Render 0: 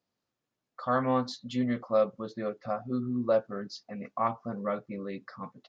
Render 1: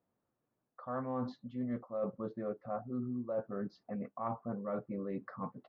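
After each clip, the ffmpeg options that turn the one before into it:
ffmpeg -i in.wav -af "lowpass=1200,areverse,acompressor=threshold=-38dB:ratio=6,areverse,volume=3dB" out.wav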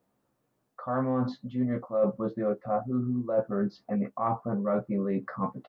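ffmpeg -i in.wav -filter_complex "[0:a]asplit=2[link_01][link_02];[link_02]adelay=15,volume=-6dB[link_03];[link_01][link_03]amix=inputs=2:normalize=0,volume=8.5dB" out.wav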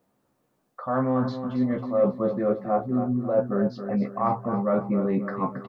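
ffmpeg -i in.wav -filter_complex "[0:a]bandreject=frequency=60:width_type=h:width=6,bandreject=frequency=120:width_type=h:width=6,asplit=2[link_01][link_02];[link_02]aecho=0:1:273|546|819|1092:0.335|0.134|0.0536|0.0214[link_03];[link_01][link_03]amix=inputs=2:normalize=0,volume=4dB" out.wav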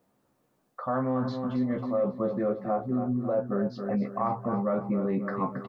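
ffmpeg -i in.wav -af "acompressor=threshold=-25dB:ratio=3" out.wav

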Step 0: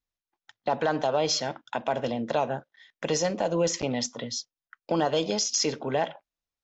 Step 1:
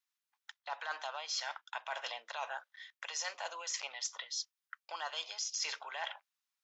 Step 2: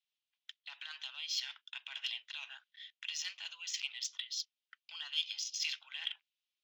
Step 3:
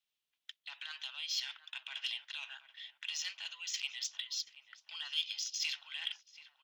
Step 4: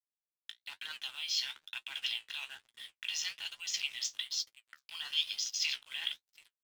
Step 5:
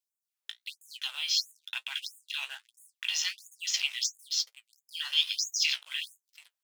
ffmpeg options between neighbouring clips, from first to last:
ffmpeg -i in.wav -af "highpass=frequency=1000:width=0.5412,highpass=frequency=1000:width=1.3066,areverse,acompressor=threshold=-40dB:ratio=5,areverse,volume=3dB" out.wav
ffmpeg -i in.wav -af "adynamicsmooth=sensitivity=5.5:basefreq=5100,highpass=frequency=3000:width_type=q:width=2.8,volume=-1dB" out.wav
ffmpeg -i in.wav -filter_complex "[0:a]asplit=2[link_01][link_02];[link_02]asoftclip=type=tanh:threshold=-37.5dB,volume=-6.5dB[link_03];[link_01][link_03]amix=inputs=2:normalize=0,asplit=2[link_04][link_05];[link_05]adelay=731,lowpass=frequency=1300:poles=1,volume=-11dB,asplit=2[link_06][link_07];[link_07]adelay=731,lowpass=frequency=1300:poles=1,volume=0.53,asplit=2[link_08][link_09];[link_09]adelay=731,lowpass=frequency=1300:poles=1,volume=0.53,asplit=2[link_10][link_11];[link_11]adelay=731,lowpass=frequency=1300:poles=1,volume=0.53,asplit=2[link_12][link_13];[link_13]adelay=731,lowpass=frequency=1300:poles=1,volume=0.53,asplit=2[link_14][link_15];[link_15]adelay=731,lowpass=frequency=1300:poles=1,volume=0.53[link_16];[link_04][link_06][link_08][link_10][link_12][link_14][link_16]amix=inputs=7:normalize=0,volume=-1.5dB" out.wav
ffmpeg -i in.wav -af "aeval=exprs='sgn(val(0))*max(abs(val(0))-0.002,0)':channel_layout=same,flanger=delay=8.5:depth=9.9:regen=42:speed=1.1:shape=sinusoidal,volume=8dB" out.wav
ffmpeg -i in.wav -af "afftfilt=real='re*gte(b*sr/1024,420*pow(6600/420,0.5+0.5*sin(2*PI*1.5*pts/sr)))':imag='im*gte(b*sr/1024,420*pow(6600/420,0.5+0.5*sin(2*PI*1.5*pts/sr)))':win_size=1024:overlap=0.75,volume=6dB" out.wav

